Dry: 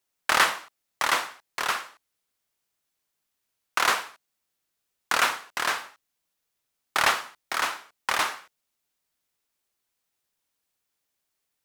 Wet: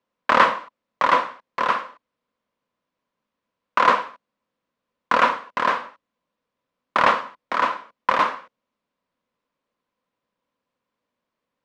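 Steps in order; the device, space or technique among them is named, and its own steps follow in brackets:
inside a cardboard box (low-pass filter 3,200 Hz 12 dB per octave; hollow resonant body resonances 230/510/1,000 Hz, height 14 dB, ringing for 25 ms)

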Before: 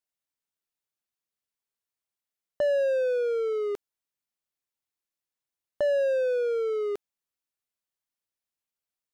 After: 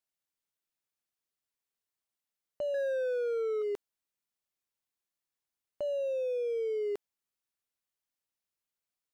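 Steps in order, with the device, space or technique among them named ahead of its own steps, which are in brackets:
0:02.74–0:03.62: octave-band graphic EQ 500/1,000/4,000 Hz +5/−11/+6 dB
limiter into clipper (brickwall limiter −25 dBFS, peak gain reduction 7 dB; hard clipping −28.5 dBFS, distortion −17 dB)
level −1 dB

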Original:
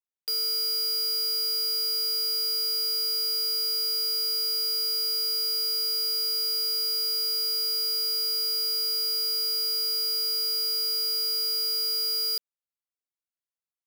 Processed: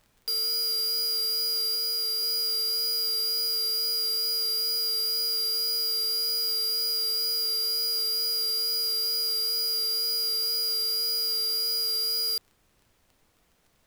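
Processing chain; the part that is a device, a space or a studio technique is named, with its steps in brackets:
vinyl LP (tape wow and flutter 15 cents; surface crackle 22 per second; pink noise bed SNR 39 dB)
0:01.75–0:02.23: elliptic high-pass filter 310 Hz

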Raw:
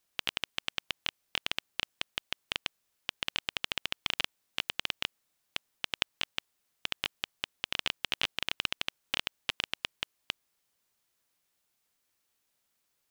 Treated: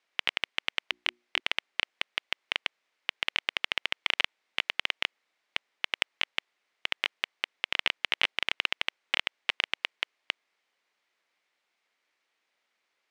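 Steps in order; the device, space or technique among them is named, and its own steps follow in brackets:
intercom (band-pass filter 370–3,700 Hz; parametric band 2,100 Hz +6 dB 0.43 octaves; soft clipping −9 dBFS, distortion −23 dB)
0:00.85–0:01.40: mains-hum notches 60/120/180/240/300/360 Hz
level +5 dB

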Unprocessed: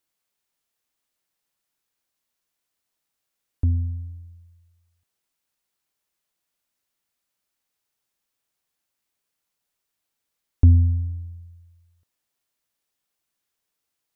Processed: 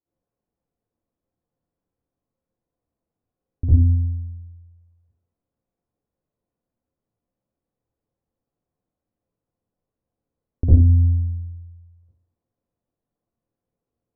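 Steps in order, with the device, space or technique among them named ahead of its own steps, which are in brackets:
television next door (downward compressor, threshold −19 dBFS, peak gain reduction 9 dB; low-pass filter 530 Hz 12 dB per octave; convolution reverb RT60 0.35 s, pre-delay 49 ms, DRR −10 dB)
level −1.5 dB

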